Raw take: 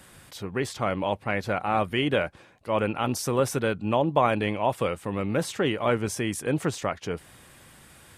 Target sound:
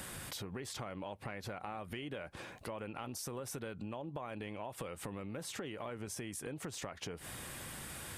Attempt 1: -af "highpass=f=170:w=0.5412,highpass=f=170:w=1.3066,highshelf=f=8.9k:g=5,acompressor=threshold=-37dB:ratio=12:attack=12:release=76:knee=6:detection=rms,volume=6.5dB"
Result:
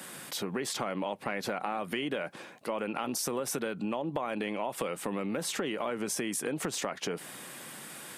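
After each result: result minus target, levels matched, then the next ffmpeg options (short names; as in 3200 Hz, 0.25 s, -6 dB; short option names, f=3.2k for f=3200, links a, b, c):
compressor: peak gain reduction -10 dB; 125 Hz band -7.0 dB
-af "highpass=f=170:w=0.5412,highpass=f=170:w=1.3066,highshelf=f=8.9k:g=5,acompressor=threshold=-48dB:ratio=12:attack=12:release=76:knee=6:detection=rms,volume=6.5dB"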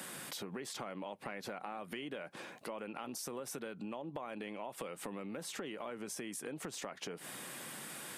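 125 Hz band -7.0 dB
-af "highshelf=f=8.9k:g=5,acompressor=threshold=-48dB:ratio=12:attack=12:release=76:knee=6:detection=rms,volume=6.5dB"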